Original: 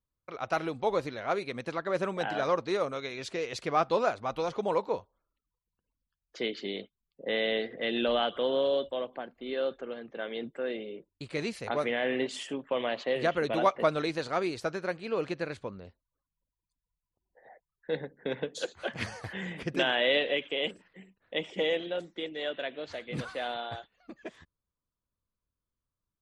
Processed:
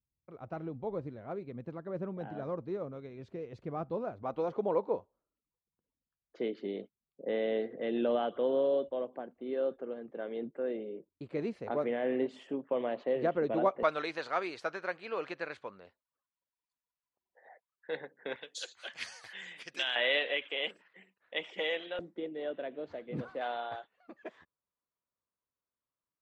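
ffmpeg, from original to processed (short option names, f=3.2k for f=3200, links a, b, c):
-af "asetnsamples=n=441:p=0,asendcmd='4.23 bandpass f 340;13.83 bandpass f 1400;18.36 bandpass f 5200;19.96 bandpass f 1600;21.99 bandpass f 320;23.41 bandpass f 850',bandpass=f=120:t=q:w=0.63:csg=0"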